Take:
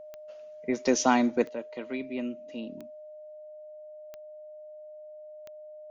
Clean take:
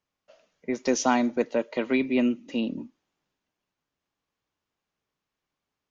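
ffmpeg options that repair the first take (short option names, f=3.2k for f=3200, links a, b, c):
-af "adeclick=t=4,bandreject=f=610:w=30,asetnsamples=n=441:p=0,asendcmd='1.49 volume volume 10.5dB',volume=0dB"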